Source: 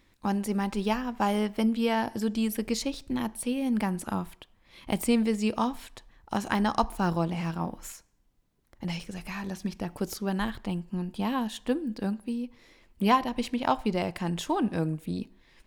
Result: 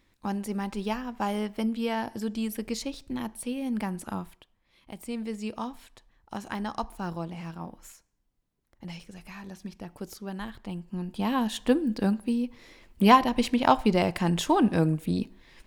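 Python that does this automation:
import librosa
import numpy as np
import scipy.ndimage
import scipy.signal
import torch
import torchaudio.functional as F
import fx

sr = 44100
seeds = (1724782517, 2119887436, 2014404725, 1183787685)

y = fx.gain(x, sr, db=fx.line((4.19, -3.0), (4.95, -14.0), (5.32, -7.0), (10.49, -7.0), (11.59, 5.0)))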